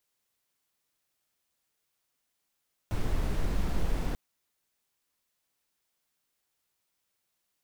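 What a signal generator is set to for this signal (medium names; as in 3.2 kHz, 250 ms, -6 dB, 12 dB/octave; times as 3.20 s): noise brown, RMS -27 dBFS 1.24 s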